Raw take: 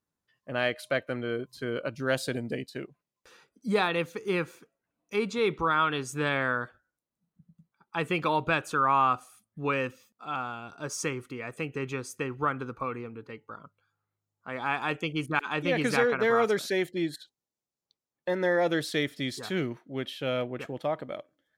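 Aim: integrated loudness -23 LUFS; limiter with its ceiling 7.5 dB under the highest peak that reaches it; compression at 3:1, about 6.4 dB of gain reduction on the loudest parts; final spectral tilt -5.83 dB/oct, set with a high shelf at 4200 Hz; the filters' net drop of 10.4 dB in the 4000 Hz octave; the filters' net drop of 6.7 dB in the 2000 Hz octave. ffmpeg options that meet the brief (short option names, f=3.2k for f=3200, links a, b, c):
-af "equalizer=f=2k:t=o:g=-6,equalizer=f=4k:t=o:g=-8,highshelf=f=4.2k:g=-6.5,acompressor=threshold=-29dB:ratio=3,volume=14.5dB,alimiter=limit=-12dB:level=0:latency=1"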